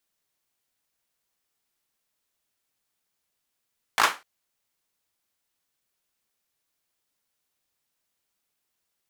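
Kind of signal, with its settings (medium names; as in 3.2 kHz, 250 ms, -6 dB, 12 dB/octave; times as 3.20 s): hand clap length 0.25 s, apart 18 ms, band 1.2 kHz, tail 0.26 s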